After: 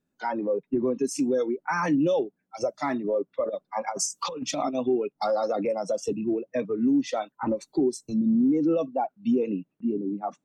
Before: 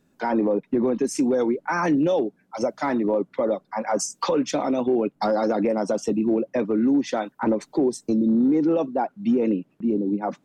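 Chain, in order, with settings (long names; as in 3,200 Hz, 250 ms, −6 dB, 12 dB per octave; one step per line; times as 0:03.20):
noise reduction from a noise print of the clip's start 13 dB
0:03.44–0:04.75: compressor whose output falls as the input rises −26 dBFS, ratio −0.5
level −2 dB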